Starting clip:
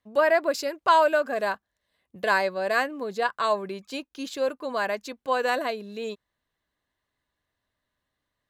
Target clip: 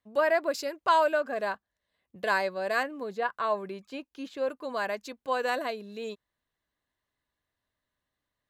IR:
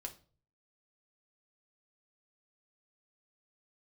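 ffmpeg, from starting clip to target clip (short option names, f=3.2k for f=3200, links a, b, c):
-filter_complex "[0:a]asettb=1/sr,asplit=3[a][b][c];[a]atrim=end=1.124[d];[b]atrim=start=1.12:end=2.23,asetpts=PTS-STARTPTS,afade=t=in:d=0.004:c=qsin,afade=t=out:st=1.106:d=0.004:c=qsin,highshelf=f=6.3k:g=-6.5[e];[c]atrim=start=2.226[f];[d][e]acrossfade=d=0.004:c1=hsin:c2=qsin[g];[g][f]acrossfade=d=0.004:c1=qsin:c2=hsin,asettb=1/sr,asplit=3[h][i][j];[h]atrim=end=2.834[k];[i]atrim=start=2.83:end=4.5,asetpts=PTS-STARTPTS,afade=t=in:d=0.004:c=qsin,afade=t=out:st=1.666:d=0.004:c=qsin,acrossover=split=3000[l][m];[m]acompressor=threshold=-52dB:ratio=4:attack=1:release=60[n];[l][n]amix=inputs=2:normalize=0[o];[j]atrim=start=4.496[p];[k][o]acrossfade=d=0.004:c1=hsin:c2=qsin[q];[q][p]acrossfade=d=0.004:c1=qsin:c2=hsin,volume=-4dB"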